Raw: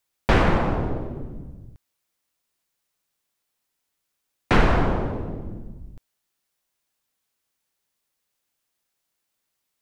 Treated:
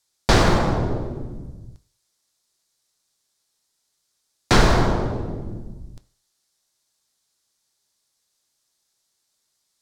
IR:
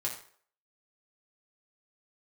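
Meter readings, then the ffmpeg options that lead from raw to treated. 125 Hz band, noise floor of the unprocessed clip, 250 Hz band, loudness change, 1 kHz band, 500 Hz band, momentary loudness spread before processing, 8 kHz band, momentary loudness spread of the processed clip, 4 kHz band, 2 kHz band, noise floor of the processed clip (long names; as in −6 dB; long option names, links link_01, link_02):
+3.0 dB, −79 dBFS, +2.0 dB, +2.0 dB, +2.5 dB, +2.5 dB, 19 LU, can't be measured, 20 LU, +8.5 dB, +1.5 dB, −74 dBFS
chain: -filter_complex "[0:a]aexciter=amount=6:drive=6.7:freq=3900,adynamicsmooth=sensitivity=6:basefreq=5700,asplit=2[link_01][link_02];[1:a]atrim=start_sample=2205,lowpass=4600[link_03];[link_02][link_03]afir=irnorm=-1:irlink=0,volume=-10dB[link_04];[link_01][link_04]amix=inputs=2:normalize=0"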